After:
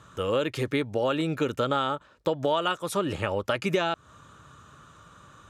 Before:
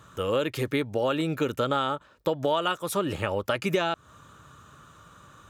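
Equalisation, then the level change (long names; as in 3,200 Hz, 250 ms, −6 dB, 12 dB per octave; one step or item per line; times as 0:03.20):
low-pass filter 9,900 Hz 12 dB per octave
0.0 dB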